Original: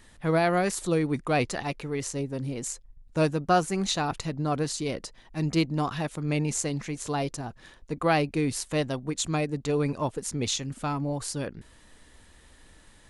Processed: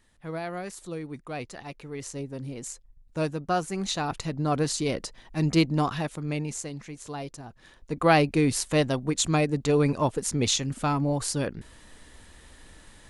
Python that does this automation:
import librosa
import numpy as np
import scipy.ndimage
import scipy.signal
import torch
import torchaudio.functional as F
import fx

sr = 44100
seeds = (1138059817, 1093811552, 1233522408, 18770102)

y = fx.gain(x, sr, db=fx.line((1.49, -10.5), (2.15, -4.0), (3.58, -4.0), (4.7, 3.0), (5.79, 3.0), (6.7, -7.0), (7.45, -7.0), (8.1, 4.0)))